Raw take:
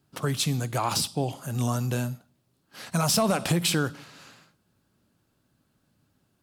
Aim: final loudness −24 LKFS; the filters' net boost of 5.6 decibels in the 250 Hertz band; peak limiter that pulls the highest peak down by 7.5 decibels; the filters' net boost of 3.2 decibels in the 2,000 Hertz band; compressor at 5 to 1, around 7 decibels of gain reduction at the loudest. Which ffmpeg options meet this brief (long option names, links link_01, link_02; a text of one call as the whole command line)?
ffmpeg -i in.wav -af "equalizer=frequency=250:width_type=o:gain=7.5,equalizer=frequency=2000:width_type=o:gain=4.5,acompressor=threshold=-23dB:ratio=5,volume=7.5dB,alimiter=limit=-14dB:level=0:latency=1" out.wav